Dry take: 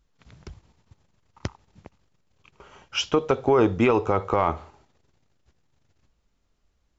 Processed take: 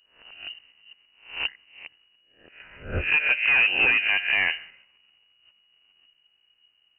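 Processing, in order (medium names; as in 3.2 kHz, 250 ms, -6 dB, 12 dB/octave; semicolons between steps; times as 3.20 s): reverse spectral sustain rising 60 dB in 0.43 s; hard clipper -16 dBFS, distortion -12 dB; frequency inversion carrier 2.9 kHz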